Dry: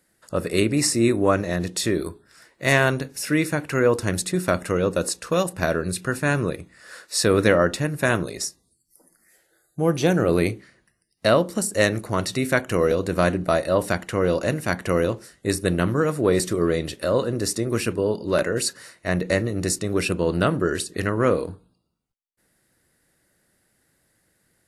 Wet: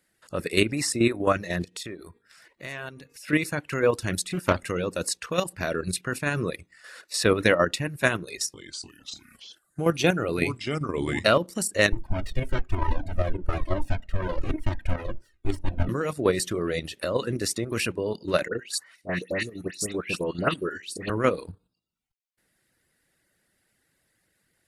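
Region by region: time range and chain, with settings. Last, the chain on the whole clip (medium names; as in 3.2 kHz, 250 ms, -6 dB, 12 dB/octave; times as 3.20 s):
1.64–3.29 s: de-hum 235.8 Hz, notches 11 + compression 2.5:1, threshold -38 dBFS
4.27–4.67 s: bass shelf 73 Hz +11 dB + doubling 31 ms -9.5 dB + loudspeaker Doppler distortion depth 0.24 ms
8.24–11.38 s: small resonant body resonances 1.4/2.5 kHz, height 11 dB, ringing for 70 ms + ever faster or slower copies 298 ms, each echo -3 st, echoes 3, each echo -6 dB
11.92–15.89 s: comb filter that takes the minimum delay 3.2 ms + tilt EQ -3.5 dB/octave + Shepard-style flanger falling 1.1 Hz
18.48–21.10 s: high-pass 120 Hz + phase dispersion highs, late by 115 ms, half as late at 2.3 kHz + upward expansion, over -30 dBFS
whole clip: reverb removal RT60 0.57 s; peaking EQ 2.7 kHz +6 dB 1.4 oct; level held to a coarse grid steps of 9 dB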